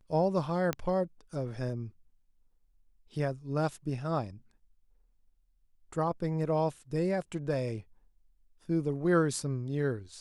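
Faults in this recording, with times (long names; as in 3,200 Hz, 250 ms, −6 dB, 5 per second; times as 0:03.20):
0:00.73: click −16 dBFS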